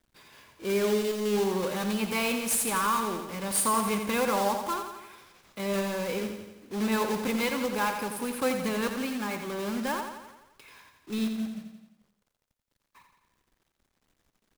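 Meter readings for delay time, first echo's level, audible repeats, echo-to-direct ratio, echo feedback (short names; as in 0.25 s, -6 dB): 86 ms, -7.5 dB, 6, -5.5 dB, 58%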